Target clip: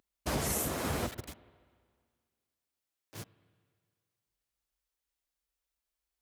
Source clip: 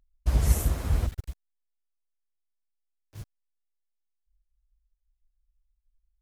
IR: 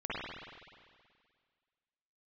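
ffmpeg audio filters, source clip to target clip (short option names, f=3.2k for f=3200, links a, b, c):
-filter_complex "[0:a]highpass=230,alimiter=level_in=5dB:limit=-24dB:level=0:latency=1:release=241,volume=-5dB,asplit=2[a][b];[1:a]atrim=start_sample=2205[c];[b][c]afir=irnorm=-1:irlink=0,volume=-23.5dB[d];[a][d]amix=inputs=2:normalize=0,volume=6.5dB"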